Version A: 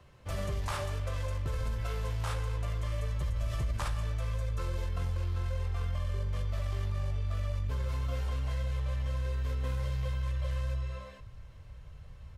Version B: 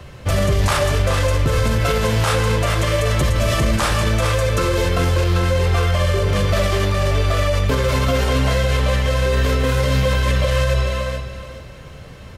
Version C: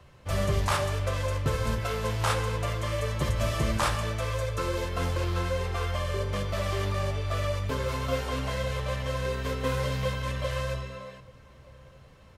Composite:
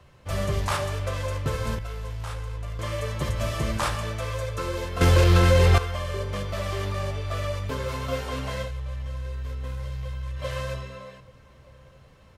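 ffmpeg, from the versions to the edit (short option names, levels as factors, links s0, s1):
-filter_complex "[0:a]asplit=2[s0][s1];[2:a]asplit=4[s2][s3][s4][s5];[s2]atrim=end=1.792[s6];[s0]atrim=start=1.788:end=2.792[s7];[s3]atrim=start=2.788:end=5.012[s8];[1:a]atrim=start=5.008:end=5.782[s9];[s4]atrim=start=5.778:end=8.72[s10];[s1]atrim=start=8.62:end=10.46[s11];[s5]atrim=start=10.36[s12];[s6][s7]acrossfade=d=0.004:c1=hsin:c2=hsin[s13];[s13][s8]acrossfade=d=0.004:c1=hsin:c2=hsin[s14];[s14][s9]acrossfade=d=0.004:c1=hsin:c2=hsin[s15];[s15][s10]acrossfade=d=0.004:c1=hsin:c2=hsin[s16];[s16][s11]acrossfade=d=0.1:c1=tri:c2=tri[s17];[s17][s12]acrossfade=d=0.1:c1=tri:c2=tri"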